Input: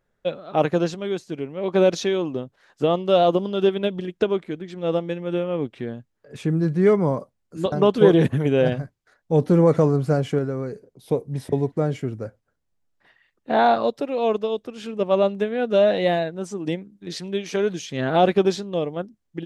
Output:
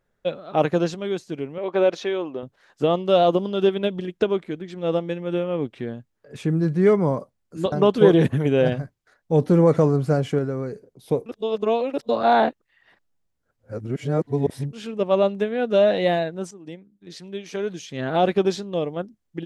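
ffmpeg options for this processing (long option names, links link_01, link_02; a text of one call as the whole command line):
ffmpeg -i in.wav -filter_complex "[0:a]asettb=1/sr,asplit=3[link_01][link_02][link_03];[link_01]atrim=end=1.584[link_04];[link_02]atrim=start=1.58:end=2.43,asetpts=PTS-STARTPTS,afade=type=in:duration=0.004:curve=qsin,afade=type=out:start_time=0.846:duration=0.004:curve=qsin,bass=frequency=250:gain=-14,treble=frequency=4000:gain=-12[link_05];[link_03]atrim=start=2.426[link_06];[link_04][link_05]acrossfade=duration=0.004:curve1=hsin:curve2=qsin[link_07];[link_07][link_06]acrossfade=duration=0.004:curve1=qsin:curve2=hsin,asplit=4[link_08][link_09][link_10][link_11];[link_08]atrim=end=11.262[link_12];[link_09]atrim=start=11.258:end=14.732,asetpts=PTS-STARTPTS,areverse[link_13];[link_10]atrim=start=14.728:end=16.51,asetpts=PTS-STARTPTS,afade=type=out:start_time=1.778:duration=0.004:curve=hsin:silence=0.188365[link_14];[link_11]atrim=start=16.51,asetpts=PTS-STARTPTS,afade=type=in:duration=2.41:silence=0.188365[link_15];[link_12][link_13]acrossfade=duration=0.004:curve1=hsin:curve2=hsin[link_16];[link_14][link_15]concat=n=2:v=0:a=1[link_17];[link_16][link_17]acrossfade=duration=0.004:curve1=hsin:curve2=hsin" out.wav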